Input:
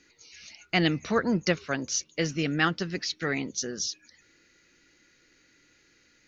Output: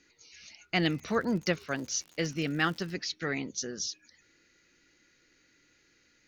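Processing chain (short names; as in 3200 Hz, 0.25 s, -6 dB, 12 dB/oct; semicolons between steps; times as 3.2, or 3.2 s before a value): 0.74–2.92 crackle 57/s -> 200/s -36 dBFS; gain -3.5 dB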